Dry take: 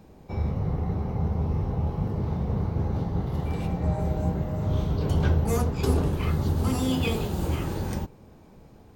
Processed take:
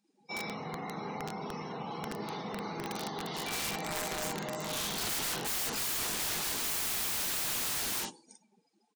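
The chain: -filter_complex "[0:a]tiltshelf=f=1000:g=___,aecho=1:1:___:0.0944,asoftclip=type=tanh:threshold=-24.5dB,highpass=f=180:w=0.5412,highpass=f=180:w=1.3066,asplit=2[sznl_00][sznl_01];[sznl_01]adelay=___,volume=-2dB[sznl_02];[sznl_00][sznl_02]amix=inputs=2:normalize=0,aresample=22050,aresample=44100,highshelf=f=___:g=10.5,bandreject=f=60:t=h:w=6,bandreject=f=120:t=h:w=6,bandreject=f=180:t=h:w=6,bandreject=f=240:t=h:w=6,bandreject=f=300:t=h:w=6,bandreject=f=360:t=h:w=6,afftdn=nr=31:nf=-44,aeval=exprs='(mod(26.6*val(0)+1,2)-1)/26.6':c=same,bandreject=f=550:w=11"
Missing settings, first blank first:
-9, 379, 44, 2800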